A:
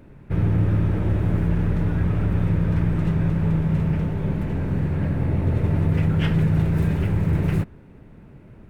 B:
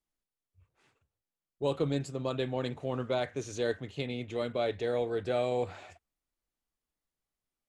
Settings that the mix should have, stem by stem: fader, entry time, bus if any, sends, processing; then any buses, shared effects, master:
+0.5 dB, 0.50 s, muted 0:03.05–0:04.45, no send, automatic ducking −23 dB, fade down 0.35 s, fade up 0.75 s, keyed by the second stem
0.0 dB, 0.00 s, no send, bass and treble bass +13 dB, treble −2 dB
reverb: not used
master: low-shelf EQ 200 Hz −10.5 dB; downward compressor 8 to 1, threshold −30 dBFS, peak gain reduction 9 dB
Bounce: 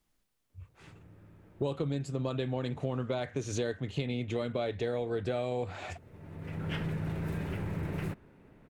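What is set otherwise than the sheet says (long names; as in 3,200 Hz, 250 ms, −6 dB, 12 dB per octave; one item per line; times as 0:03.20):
stem A +0.5 dB → −6.0 dB
stem B 0.0 dB → +12.0 dB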